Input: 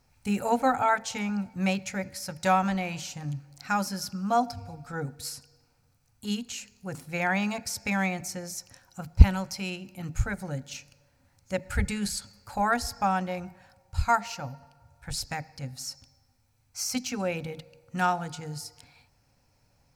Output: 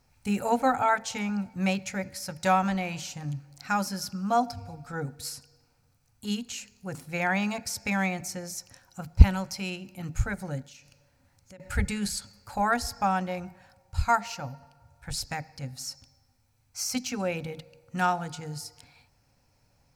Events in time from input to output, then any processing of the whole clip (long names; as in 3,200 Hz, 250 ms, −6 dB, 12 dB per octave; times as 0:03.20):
0:10.62–0:11.60: downward compressor 4 to 1, threshold −49 dBFS